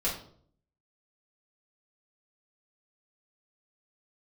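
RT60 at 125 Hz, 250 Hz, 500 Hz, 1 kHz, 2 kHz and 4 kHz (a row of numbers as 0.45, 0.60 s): 0.80, 0.75, 0.65, 0.50, 0.40, 0.40 s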